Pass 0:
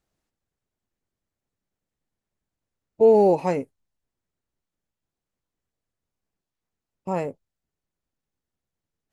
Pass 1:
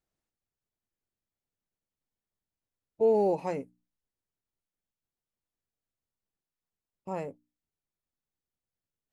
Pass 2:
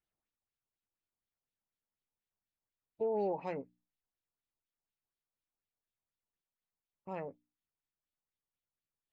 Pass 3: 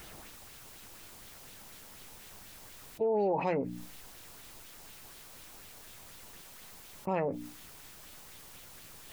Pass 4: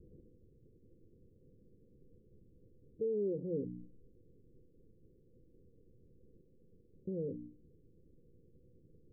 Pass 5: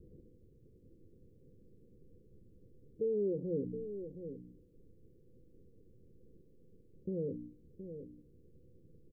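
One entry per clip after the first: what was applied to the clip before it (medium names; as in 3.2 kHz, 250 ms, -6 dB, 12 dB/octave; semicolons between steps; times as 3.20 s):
hum notches 60/120/180/240/300 Hz; trim -8.5 dB
LFO low-pass sine 4.1 Hz 870–3800 Hz; peak limiter -20 dBFS, peak gain reduction 6.5 dB; trim -7 dB
level flattener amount 70%; trim +3.5 dB
rippled Chebyshev low-pass 510 Hz, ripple 3 dB; trim -2.5 dB
delay 720 ms -9.5 dB; trim +1.5 dB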